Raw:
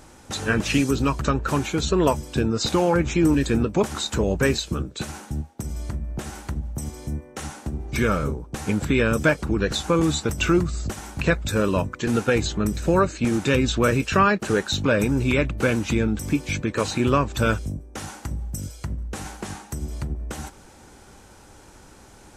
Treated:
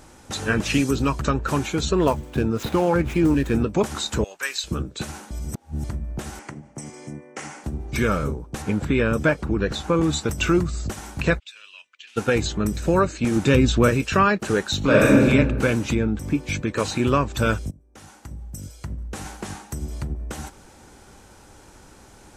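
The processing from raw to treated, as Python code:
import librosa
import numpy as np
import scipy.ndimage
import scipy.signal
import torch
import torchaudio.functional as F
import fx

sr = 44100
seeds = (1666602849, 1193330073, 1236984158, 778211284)

y = fx.median_filter(x, sr, points=9, at=(1.97, 3.54))
y = fx.highpass(y, sr, hz=1400.0, slope=12, at=(4.24, 4.64))
y = fx.cabinet(y, sr, low_hz=140.0, low_slope=24, high_hz=8700.0, hz=(190.0, 2100.0, 3800.0), db=(-9, 7, -9), at=(6.39, 7.64))
y = fx.high_shelf(y, sr, hz=3900.0, db=-9.0, at=(8.62, 10.13))
y = fx.ladder_bandpass(y, sr, hz=3200.0, resonance_pct=60, at=(11.38, 12.16), fade=0.02)
y = fx.low_shelf(y, sr, hz=440.0, db=5.5, at=(13.36, 13.89))
y = fx.reverb_throw(y, sr, start_s=14.78, length_s=0.46, rt60_s=1.5, drr_db=-5.0)
y = fx.high_shelf(y, sr, hz=3000.0, db=-9.5, at=(15.94, 16.47), fade=0.02)
y = fx.edit(y, sr, fx.reverse_span(start_s=5.31, length_s=0.53),
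    fx.fade_in_from(start_s=17.71, length_s=1.6, floor_db=-20.0), tone=tone)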